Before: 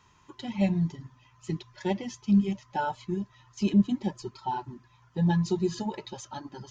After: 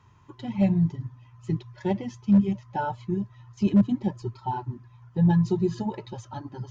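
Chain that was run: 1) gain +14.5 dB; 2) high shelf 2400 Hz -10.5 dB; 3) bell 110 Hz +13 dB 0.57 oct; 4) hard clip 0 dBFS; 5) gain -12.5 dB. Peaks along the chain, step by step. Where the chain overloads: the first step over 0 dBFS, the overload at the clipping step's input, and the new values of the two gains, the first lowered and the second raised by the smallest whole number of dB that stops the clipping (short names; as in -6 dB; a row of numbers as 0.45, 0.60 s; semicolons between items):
+1.5, +1.5, +3.5, 0.0, -12.5 dBFS; step 1, 3.5 dB; step 1 +10.5 dB, step 5 -8.5 dB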